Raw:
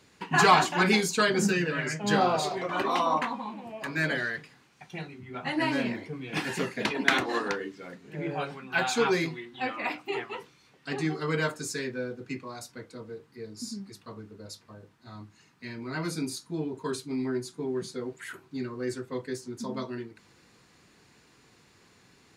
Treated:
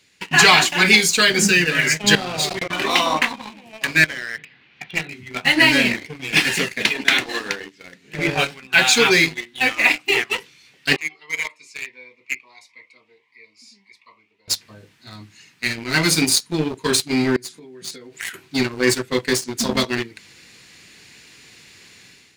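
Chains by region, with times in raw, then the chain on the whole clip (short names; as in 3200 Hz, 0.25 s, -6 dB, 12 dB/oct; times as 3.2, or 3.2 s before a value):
2.15–2.82 low shelf 160 Hz +12 dB + level quantiser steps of 16 dB
4.04–5.11 LPF 3400 Hz 24 dB/oct + compressor, threshold -36 dBFS
10.96–14.48 double band-pass 1500 Hz, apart 1.1 oct + cascading phaser rising 1.6 Hz
17.36–18.34 HPF 130 Hz 6 dB/oct + compressor, threshold -43 dBFS
whole clip: resonant high shelf 1600 Hz +9 dB, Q 1.5; sample leveller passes 2; AGC; gain -1 dB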